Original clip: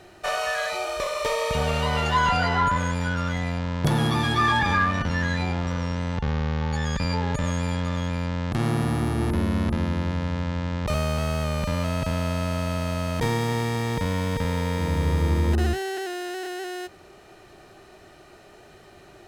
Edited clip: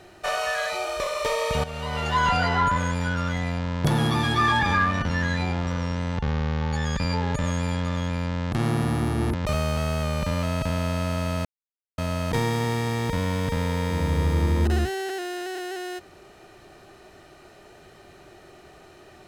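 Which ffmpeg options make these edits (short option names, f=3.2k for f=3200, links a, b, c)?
-filter_complex "[0:a]asplit=4[a][b][c][d];[a]atrim=end=1.64,asetpts=PTS-STARTPTS,afade=t=out:st=1.636:d=0.004:c=hsin:silence=0.223872[e];[b]atrim=start=1.64:end=9.342,asetpts=PTS-STARTPTS,afade=t=in:d=0.64:silence=0.223872[f];[c]atrim=start=10.748:end=12.86,asetpts=PTS-STARTPTS,afade=t=out:st=2.108:d=0.004:c=hsin,apad=pad_dur=0.53[g];[d]atrim=start=12.86,asetpts=PTS-STARTPTS,afade=t=in:d=0.004:c=hsin[h];[e][f]concat=n=2:v=0:a=1[i];[g][h]concat=n=2:v=0:a=1[j];[i][j]acrossfade=d=0.004:c1=hsin:c2=hsin"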